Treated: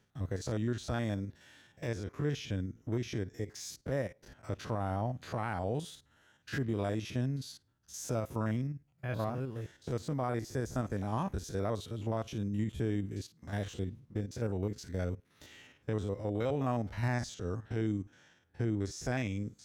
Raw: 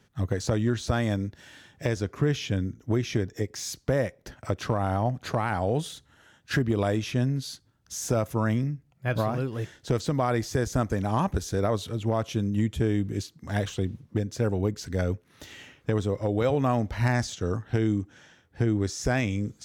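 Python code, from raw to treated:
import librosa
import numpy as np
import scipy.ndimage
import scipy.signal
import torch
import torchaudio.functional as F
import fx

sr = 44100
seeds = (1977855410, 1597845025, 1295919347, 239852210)

y = fx.spec_steps(x, sr, hold_ms=50)
y = fx.dynamic_eq(y, sr, hz=3500.0, q=0.71, threshold_db=-49.0, ratio=4.0, max_db=-4, at=(9.31, 10.76))
y = F.gain(torch.from_numpy(y), -7.5).numpy()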